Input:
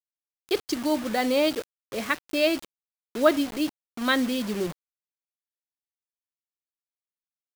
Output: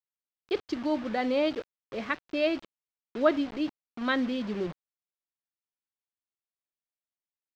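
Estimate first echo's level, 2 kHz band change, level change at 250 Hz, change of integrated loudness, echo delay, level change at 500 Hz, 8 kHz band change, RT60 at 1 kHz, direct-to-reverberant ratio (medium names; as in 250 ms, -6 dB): no echo, -5.0 dB, -3.5 dB, -4.0 dB, no echo, -3.5 dB, under -15 dB, no reverb, no reverb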